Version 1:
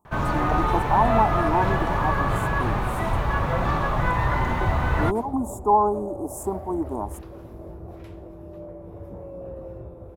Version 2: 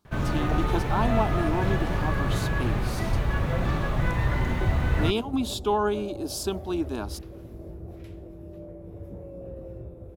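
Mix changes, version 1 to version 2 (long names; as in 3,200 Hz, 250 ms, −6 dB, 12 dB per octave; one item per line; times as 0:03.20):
speech: remove elliptic band-stop filter 960–7,600 Hz
master: add parametric band 980 Hz −11 dB 1.3 octaves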